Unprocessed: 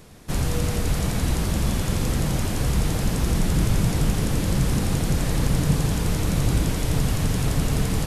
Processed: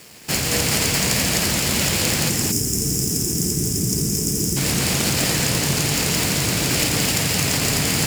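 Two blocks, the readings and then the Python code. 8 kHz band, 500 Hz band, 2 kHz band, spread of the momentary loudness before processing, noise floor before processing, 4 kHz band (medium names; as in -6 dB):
+13.5 dB, +3.5 dB, +10.0 dB, 3 LU, -26 dBFS, +12.5 dB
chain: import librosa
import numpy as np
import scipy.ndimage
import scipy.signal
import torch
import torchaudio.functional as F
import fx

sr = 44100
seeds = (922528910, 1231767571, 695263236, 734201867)

p1 = fx.lower_of_two(x, sr, delay_ms=0.41)
p2 = scipy.signal.sosfilt(scipy.signal.butter(2, 77.0, 'highpass', fs=sr, output='sos'), p1)
p3 = fx.spec_box(p2, sr, start_s=2.29, length_s=2.28, low_hz=460.0, high_hz=5000.0, gain_db=-20)
p4 = fx.peak_eq(p3, sr, hz=11000.0, db=-9.0, octaves=0.39)
p5 = fx.over_compress(p4, sr, threshold_db=-29.0, ratio=-1.0)
p6 = p4 + (p5 * 10.0 ** (-2.5 / 20.0))
p7 = fx.tilt_eq(p6, sr, slope=3.0)
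p8 = np.sign(p7) * np.maximum(np.abs(p7) - 10.0 ** (-46.0 / 20.0), 0.0)
p9 = p8 + 10.0 ** (-4.0 / 20.0) * np.pad(p8, (int(222 * sr / 1000.0), 0))[:len(p8)]
p10 = fx.doppler_dist(p9, sr, depth_ms=0.12)
y = p10 * 10.0 ** (4.5 / 20.0)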